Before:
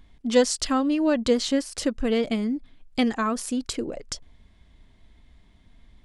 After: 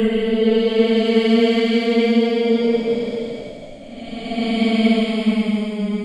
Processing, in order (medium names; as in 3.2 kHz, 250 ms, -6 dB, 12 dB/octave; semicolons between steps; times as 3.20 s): level-controlled noise filter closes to 2.6 kHz, open at -18.5 dBFS; Paulstretch 20×, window 0.10 s, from 2.09 s; three bands expanded up and down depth 40%; trim +6 dB